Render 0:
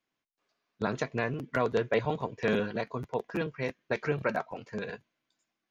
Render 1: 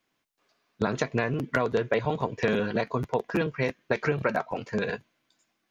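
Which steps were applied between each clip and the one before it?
compression, threshold -30 dBFS, peak gain reduction 8.5 dB; trim +8.5 dB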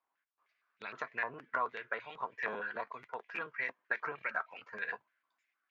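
step-sequenced band-pass 6.5 Hz 950–2400 Hz; trim +1 dB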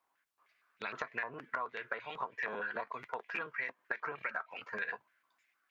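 compression 5:1, threshold -41 dBFS, peak gain reduction 11.5 dB; trim +6 dB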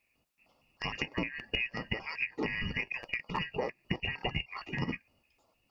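four frequency bands reordered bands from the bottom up 2143; trim +4.5 dB

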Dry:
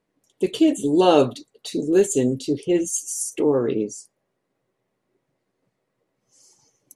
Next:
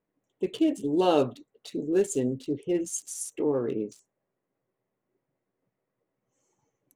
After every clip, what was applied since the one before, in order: local Wiener filter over 9 samples; trim -7 dB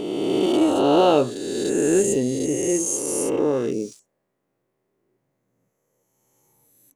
reverse spectral sustain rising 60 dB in 2.36 s; trim +3 dB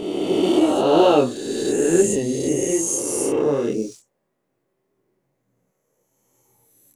chorus voices 2, 1 Hz, delay 26 ms, depth 3 ms; trim +4.5 dB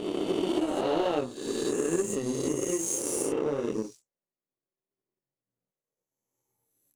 compression 4:1, threshold -22 dBFS, peak gain reduction 10.5 dB; power-law waveshaper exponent 1.4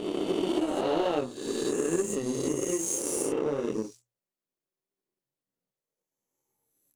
hum notches 60/120 Hz

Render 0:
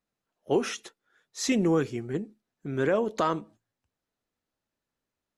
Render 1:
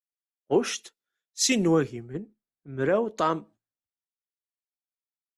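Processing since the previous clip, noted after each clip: three bands expanded up and down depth 100%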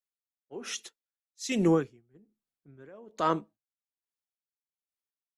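logarithmic tremolo 1.2 Hz, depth 27 dB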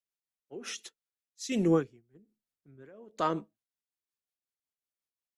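rotary cabinet horn 5.5 Hz

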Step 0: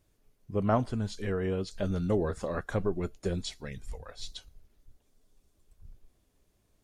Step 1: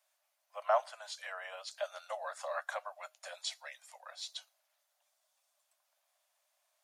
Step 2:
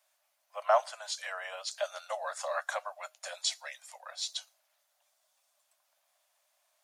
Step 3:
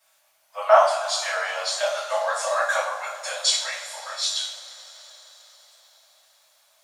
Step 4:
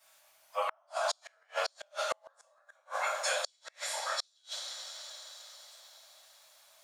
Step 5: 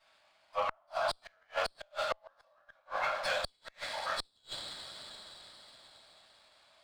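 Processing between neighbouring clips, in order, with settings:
steep high-pass 580 Hz 96 dB/octave
dynamic bell 6.7 kHz, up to +6 dB, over -59 dBFS, Q 0.92; trim +4 dB
two-slope reverb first 0.58 s, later 4.9 s, from -20 dB, DRR -9 dB; trim +2.5 dB
compression 5:1, threshold -25 dBFS, peak gain reduction 14.5 dB; inverted gate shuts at -19 dBFS, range -40 dB
resampled via 11.025 kHz; sliding maximum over 3 samples

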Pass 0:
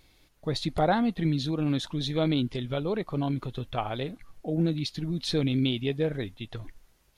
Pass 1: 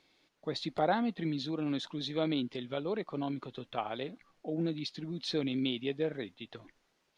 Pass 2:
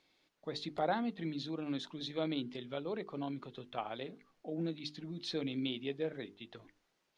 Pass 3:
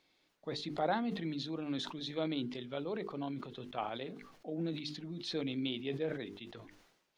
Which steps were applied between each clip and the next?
three-band isolator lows -23 dB, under 170 Hz, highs -17 dB, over 6.8 kHz; trim -4.5 dB
hum notches 50/100/150/200/250/300/350/400/450 Hz; trim -4 dB
decay stretcher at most 64 dB/s

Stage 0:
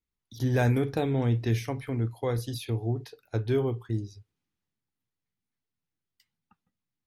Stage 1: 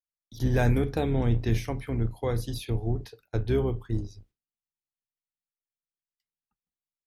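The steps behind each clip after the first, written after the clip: octave divider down 2 oct, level -3 dB; gate with hold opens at -44 dBFS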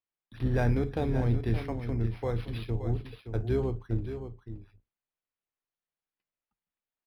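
on a send: delay 571 ms -9.5 dB; on the sum: decimation joined by straight lines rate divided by 6×; trim -3 dB

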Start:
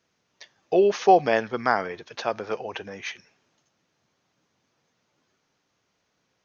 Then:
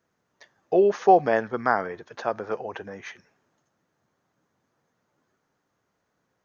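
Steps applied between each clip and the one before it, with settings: high-order bell 3.7 kHz -9.5 dB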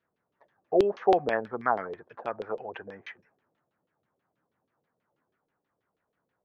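LFO low-pass saw down 6.2 Hz 390–3700 Hz; trim -7.5 dB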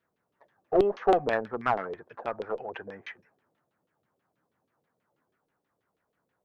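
single-diode clipper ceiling -16.5 dBFS; trim +1.5 dB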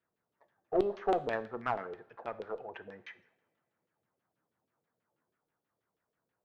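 two-slope reverb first 0.62 s, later 2.6 s, from -25 dB, DRR 13 dB; trim -7 dB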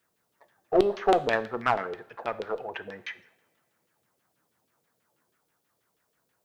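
treble shelf 2.3 kHz +9.5 dB; trim +7 dB

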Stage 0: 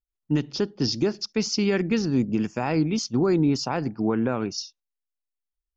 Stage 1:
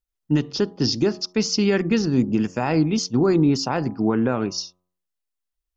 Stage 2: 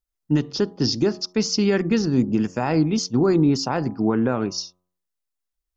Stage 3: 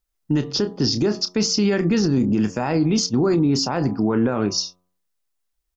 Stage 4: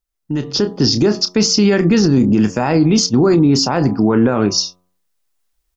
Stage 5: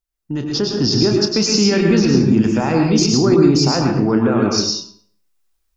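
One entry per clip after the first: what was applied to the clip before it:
band-stop 2.3 kHz, Q 18; de-hum 90.43 Hz, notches 14; trim +3.5 dB
peaking EQ 2.7 kHz -3 dB 0.75 oct
doubling 29 ms -12.5 dB; peak limiter -17.5 dBFS, peak gain reduction 9 dB; trim +6 dB
level rider gain up to 11 dB; trim -2.5 dB
reverberation RT60 0.55 s, pre-delay 98 ms, DRR 0.5 dB; trim -3.5 dB

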